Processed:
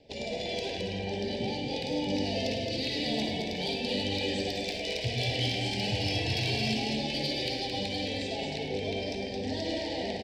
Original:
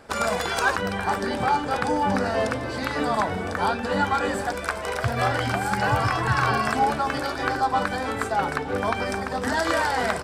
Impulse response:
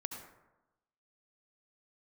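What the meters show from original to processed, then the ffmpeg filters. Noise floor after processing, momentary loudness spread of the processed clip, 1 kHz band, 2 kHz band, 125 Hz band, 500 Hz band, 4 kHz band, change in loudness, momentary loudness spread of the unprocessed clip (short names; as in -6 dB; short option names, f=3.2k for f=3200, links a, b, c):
-36 dBFS, 5 LU, -17.0 dB, -11.5 dB, -4.5 dB, -6.5 dB, +3.5 dB, -7.0 dB, 5 LU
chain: -filter_complex "[0:a]lowpass=f=4.8k:w=0.5412,lowpass=f=4.8k:w=1.3066,equalizer=f=1.2k:w=1.7:g=-14.5,acrossover=split=560|2300[a][b][c];[a]flanger=delay=6.6:depth=4.8:regen=62:speed=0.56:shape=triangular[d];[b]alimiter=level_in=2.5dB:limit=-24dB:level=0:latency=1,volume=-2.5dB[e];[c]dynaudnorm=f=270:g=13:m=10.5dB[f];[d][e][f]amix=inputs=3:normalize=0,asoftclip=type=tanh:threshold=-18.5dB,asuperstop=centerf=1300:order=4:qfactor=0.75,aecho=1:1:105|218.7:0.282|0.562[g];[1:a]atrim=start_sample=2205,asetrate=61740,aresample=44100[h];[g][h]afir=irnorm=-1:irlink=0,volume=2.5dB"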